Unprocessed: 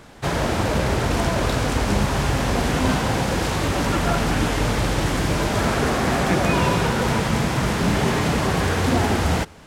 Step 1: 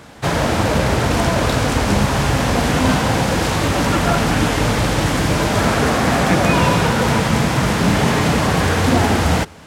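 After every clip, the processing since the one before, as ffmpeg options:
ffmpeg -i in.wav -af "highpass=57,bandreject=frequency=380:width=12,volume=5dB" out.wav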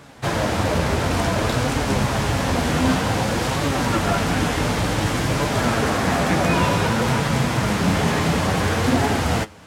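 ffmpeg -i in.wav -af "flanger=delay=6.8:depth=5.9:regen=56:speed=0.55:shape=triangular" out.wav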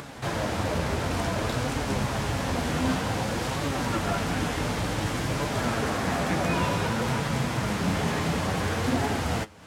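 ffmpeg -i in.wav -af "acompressor=mode=upward:threshold=-24dB:ratio=2.5,volume=-7dB" out.wav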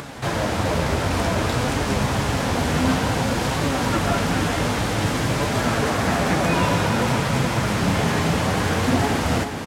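ffmpeg -i in.wav -af "aecho=1:1:422|844|1266|1688|2110|2532|2954:0.355|0.209|0.124|0.0729|0.043|0.0254|0.015,volume=5.5dB" out.wav

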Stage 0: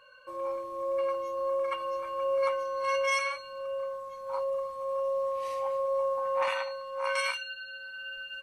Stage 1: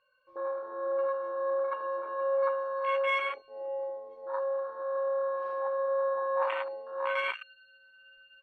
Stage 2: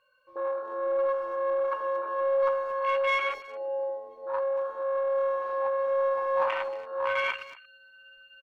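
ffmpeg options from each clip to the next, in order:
ffmpeg -i in.wav -af "lowpass=frequency=4400:width=0.5412,lowpass=frequency=4400:width=1.3066,afwtdn=0.0251" out.wav
ffmpeg -i in.wav -filter_complex "[0:a]asplit=2[link_01][link_02];[link_02]asoftclip=type=tanh:threshold=-28dB,volume=-5dB[link_03];[link_01][link_03]amix=inputs=2:normalize=0,asplit=2[link_04][link_05];[link_05]adelay=230,highpass=300,lowpass=3400,asoftclip=type=hard:threshold=-25dB,volume=-16dB[link_06];[link_04][link_06]amix=inputs=2:normalize=0" out.wav

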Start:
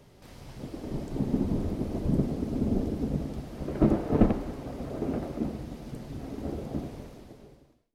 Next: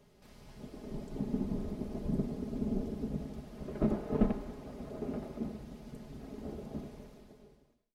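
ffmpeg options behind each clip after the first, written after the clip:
ffmpeg -i in.wav -af "aecho=1:1:4.8:0.5,volume=-8.5dB" out.wav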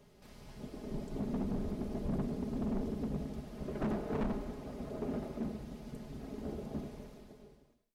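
ffmpeg -i in.wav -af "volume=32.5dB,asoftclip=hard,volume=-32.5dB,volume=1.5dB" out.wav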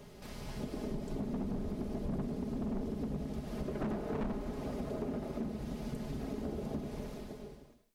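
ffmpeg -i in.wav -af "acompressor=threshold=-44dB:ratio=6,volume=9dB" out.wav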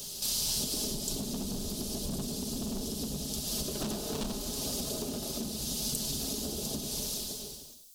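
ffmpeg -i in.wav -af "aexciter=amount=13.3:drive=7.1:freq=3200" out.wav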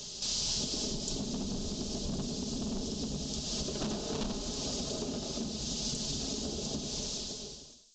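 ffmpeg -i in.wav -af "aresample=16000,aresample=44100" out.wav

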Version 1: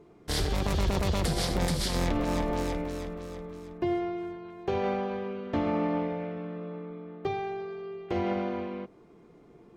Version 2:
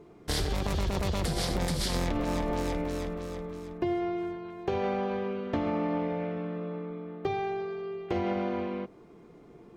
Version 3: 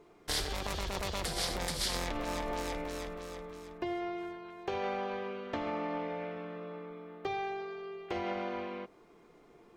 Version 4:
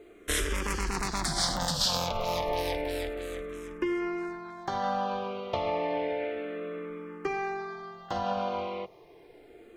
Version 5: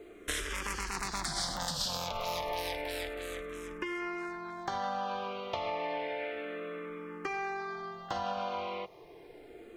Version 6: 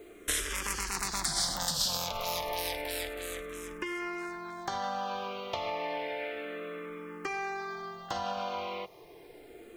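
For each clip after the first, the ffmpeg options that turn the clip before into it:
ffmpeg -i in.wav -af "acompressor=threshold=-28dB:ratio=6,volume=2.5dB" out.wav
ffmpeg -i in.wav -af "equalizer=frequency=120:width=0.3:gain=-12.5" out.wav
ffmpeg -i in.wav -filter_complex "[0:a]asplit=2[link_01][link_02];[link_02]afreqshift=-0.31[link_03];[link_01][link_03]amix=inputs=2:normalize=1,volume=8.5dB" out.wav
ffmpeg -i in.wav -filter_complex "[0:a]acrossover=split=760|8000[link_01][link_02][link_03];[link_01]acompressor=threshold=-43dB:ratio=4[link_04];[link_02]acompressor=threshold=-36dB:ratio=4[link_05];[link_03]acompressor=threshold=-48dB:ratio=4[link_06];[link_04][link_05][link_06]amix=inputs=3:normalize=0,volume=1.5dB" out.wav
ffmpeg -i in.wav -af "crystalizer=i=1.5:c=0" out.wav

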